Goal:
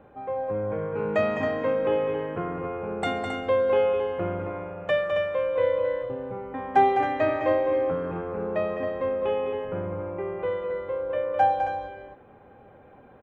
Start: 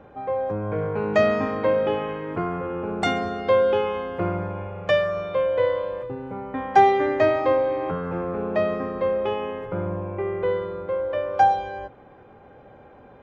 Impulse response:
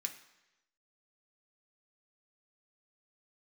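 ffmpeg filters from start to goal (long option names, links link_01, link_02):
-filter_complex "[0:a]equalizer=frequency=5500:width_type=o:width=0.88:gain=-13,aecho=1:1:207|271.1:0.447|0.447,asplit=2[link_01][link_02];[1:a]atrim=start_sample=2205,highshelf=frequency=2900:gain=12[link_03];[link_02][link_03]afir=irnorm=-1:irlink=0,volume=-14.5dB[link_04];[link_01][link_04]amix=inputs=2:normalize=0,volume=-4.5dB"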